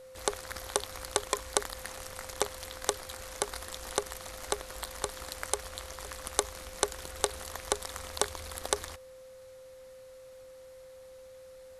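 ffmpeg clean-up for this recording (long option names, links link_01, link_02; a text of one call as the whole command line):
ffmpeg -i in.wav -af "bandreject=frequency=520:width=30" out.wav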